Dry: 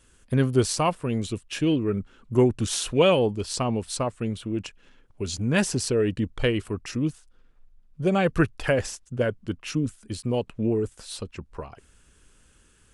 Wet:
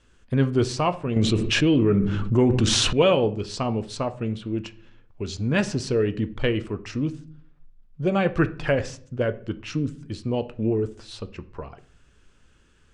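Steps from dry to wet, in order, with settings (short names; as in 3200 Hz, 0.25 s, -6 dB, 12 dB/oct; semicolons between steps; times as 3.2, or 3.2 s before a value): Bessel low-pass 4900 Hz, order 4; reverb RT60 0.50 s, pre-delay 7 ms, DRR 10.5 dB; 1.16–2.93 fast leveller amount 70%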